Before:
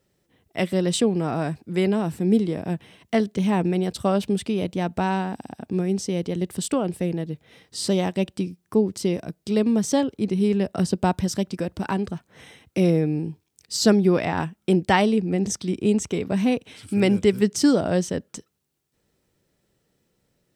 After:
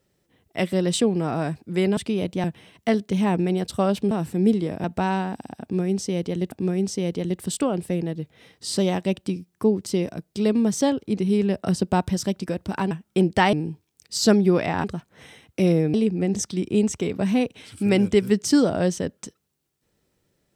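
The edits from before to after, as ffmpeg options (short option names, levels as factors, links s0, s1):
-filter_complex "[0:a]asplit=10[s0][s1][s2][s3][s4][s5][s6][s7][s8][s9];[s0]atrim=end=1.972[s10];[s1]atrim=start=4.368:end=4.842[s11];[s2]atrim=start=2.698:end=4.372[s12];[s3]atrim=start=1.968:end=2.702[s13];[s4]atrim=start=4.838:end=6.522[s14];[s5]atrim=start=5.628:end=12.022[s15];[s6]atrim=start=14.428:end=15.052[s16];[s7]atrim=start=13.118:end=14.432[s17];[s8]atrim=start=12.018:end=13.122[s18];[s9]atrim=start=15.048[s19];[s10][s11]acrossfade=d=0.004:c1=hsin:c2=hsin[s20];[s20][s12]acrossfade=d=0.004:c1=hsin:c2=hsin[s21];[s21][s13]acrossfade=d=0.004:c1=hsin:c2=hsin[s22];[s22][s14]acrossfade=d=0.004:c1=hsin:c2=hsin[s23];[s23][s15]acrossfade=d=0.004:c1=hsin:c2=hsin[s24];[s24][s16]acrossfade=d=0.004:c1=hsin:c2=hsin[s25];[s25][s17]acrossfade=d=0.004:c1=hsin:c2=hsin[s26];[s26][s18]acrossfade=d=0.004:c1=hsin:c2=hsin[s27];[s27][s19]acrossfade=d=0.004:c1=hsin:c2=hsin"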